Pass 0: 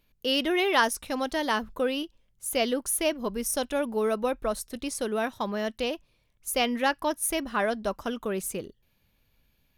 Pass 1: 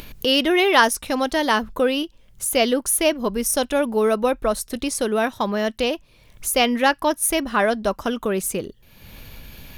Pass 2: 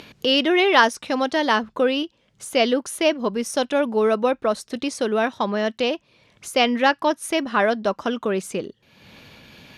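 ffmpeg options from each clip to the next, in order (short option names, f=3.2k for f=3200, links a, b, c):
-af "acompressor=mode=upward:threshold=-29dB:ratio=2.5,volume=7.5dB"
-af "highpass=150,lowpass=5.6k"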